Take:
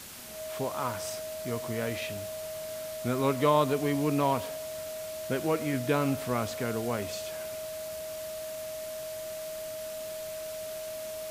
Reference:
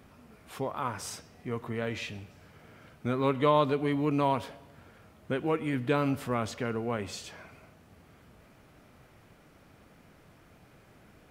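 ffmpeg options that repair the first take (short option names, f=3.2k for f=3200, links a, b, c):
-af "bandreject=f=630:w=30,afwtdn=0.0063"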